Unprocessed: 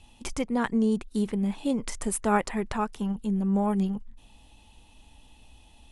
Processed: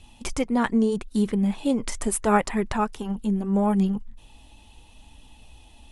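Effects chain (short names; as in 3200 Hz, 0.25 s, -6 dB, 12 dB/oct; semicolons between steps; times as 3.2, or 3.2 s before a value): flange 0.77 Hz, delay 0.5 ms, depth 3 ms, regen -63%; gain +8 dB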